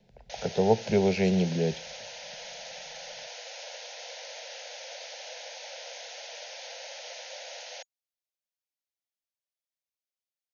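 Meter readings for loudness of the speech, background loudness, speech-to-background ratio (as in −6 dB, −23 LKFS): −26.5 LKFS, −40.5 LKFS, 14.0 dB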